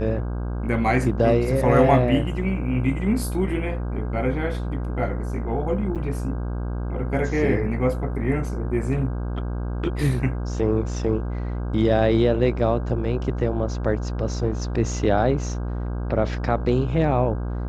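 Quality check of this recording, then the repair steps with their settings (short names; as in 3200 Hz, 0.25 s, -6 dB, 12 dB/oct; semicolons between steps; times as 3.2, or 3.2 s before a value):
buzz 60 Hz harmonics 27 -27 dBFS
5.95–5.96 gap 7.5 ms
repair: de-hum 60 Hz, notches 27; interpolate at 5.95, 7.5 ms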